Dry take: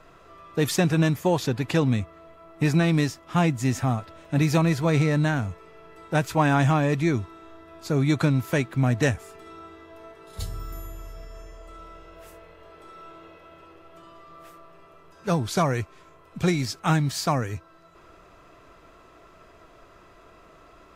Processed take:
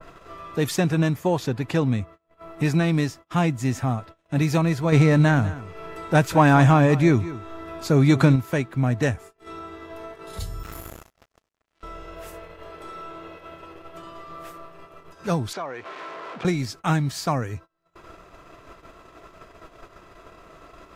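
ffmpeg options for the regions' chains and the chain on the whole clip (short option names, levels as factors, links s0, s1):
-filter_complex "[0:a]asettb=1/sr,asplit=3[s0][s1][s2];[s0]atrim=end=4.924[s3];[s1]atrim=start=4.92:end=8.36,asetpts=PTS-STARTPTS,afade=t=in:d=0.004:c=qsin,afade=t=out:st=3.436:d=0.004:c=qsin,acontrast=43,aecho=1:1:198:0.158,atrim=end_sample=151704[s4];[s2]atrim=start=8.356[s5];[s3][s4]acrossfade=d=0.004:c1=hsin:c2=qsin[s6];[s6][s5]acrossfade=d=0.004:c1=qsin:c2=hsin,asettb=1/sr,asplit=3[s7][s8][s9];[s7]atrim=end=10.634[s10];[s8]atrim=start=10.63:end=11.83,asetpts=PTS-STARTPTS,afade=t=in:d=0.004:c=qsin,afade=t=out:st=1.196:d=0.004:c=qsin,highpass=f=49:w=0.5412,highpass=f=49:w=1.3066,aeval=exprs='val(0)+0.000447*(sin(2*PI*50*n/s)+sin(2*PI*2*50*n/s)/2+sin(2*PI*3*50*n/s)/3+sin(2*PI*4*50*n/s)/4+sin(2*PI*5*50*n/s)/5)':c=same,acrusher=bits=5:mix=0:aa=0.5[s11];[s9]atrim=start=11.826[s12];[s10][s11]acrossfade=d=0.004:c1=hsin:c2=qsin[s13];[s13][s12]acrossfade=d=0.004:c1=qsin:c2=hsin,asettb=1/sr,asplit=3[s14][s15][s16];[s14]atrim=end=15.534[s17];[s15]atrim=start=15.53:end=16.45,asetpts=PTS-STARTPTS,afade=t=in:d=0.004:c=qsin,afade=t=out:st=0.916:d=0.004:c=qsin,aeval=exprs='val(0)+0.5*0.02*sgn(val(0))':c=same,acompressor=threshold=0.0562:ratio=5:attack=3.2:release=140:knee=1:detection=peak,highpass=420,lowpass=3100[s18];[s16]atrim=start=16.446[s19];[s17][s18]acrossfade=d=0.004:c1=hsin:c2=qsin[s20];[s20][s19]acrossfade=d=0.004:c1=qsin:c2=hsin,acompressor=mode=upward:threshold=0.0355:ratio=2.5,agate=range=0.0282:threshold=0.0112:ratio=16:detection=peak,adynamicequalizer=threshold=0.00794:dfrequency=2100:dqfactor=0.7:tfrequency=2100:tqfactor=0.7:attack=5:release=100:ratio=0.375:range=2:mode=cutabove:tftype=highshelf"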